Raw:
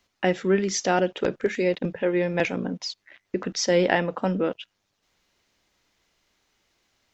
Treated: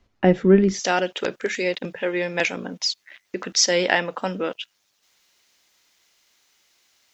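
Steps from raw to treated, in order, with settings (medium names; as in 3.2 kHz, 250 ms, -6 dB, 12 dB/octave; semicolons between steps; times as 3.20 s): tilt EQ -3 dB/octave, from 0.79 s +3 dB/octave; trim +2 dB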